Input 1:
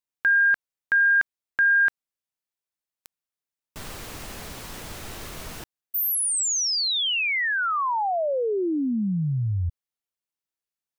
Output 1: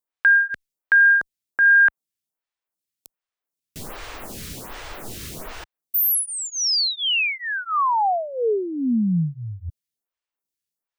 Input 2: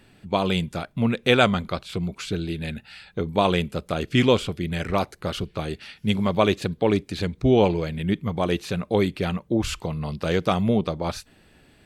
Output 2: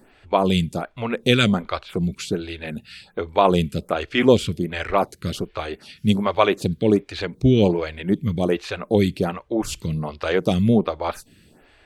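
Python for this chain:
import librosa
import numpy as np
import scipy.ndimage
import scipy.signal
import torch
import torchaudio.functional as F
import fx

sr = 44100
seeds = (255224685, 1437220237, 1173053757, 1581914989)

y = fx.stagger_phaser(x, sr, hz=1.3)
y = F.gain(torch.from_numpy(y), 5.5).numpy()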